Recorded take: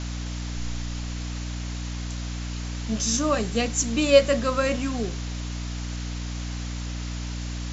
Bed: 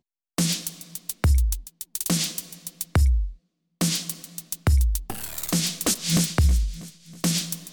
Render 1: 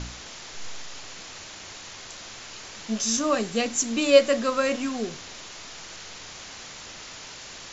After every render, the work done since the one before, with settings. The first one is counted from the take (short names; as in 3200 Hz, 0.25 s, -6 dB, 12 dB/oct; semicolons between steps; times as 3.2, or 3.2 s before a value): de-hum 60 Hz, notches 5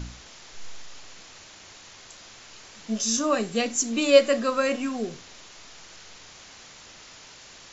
noise print and reduce 6 dB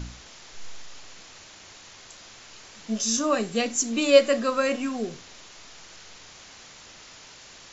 nothing audible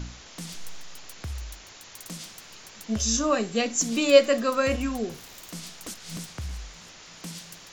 add bed -16 dB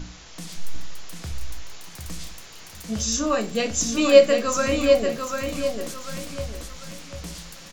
feedback echo 0.744 s, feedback 35%, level -5 dB; shoebox room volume 120 m³, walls furnished, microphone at 0.66 m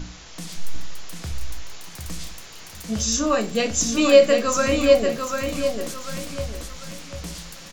gain +2 dB; limiter -3 dBFS, peak gain reduction 3 dB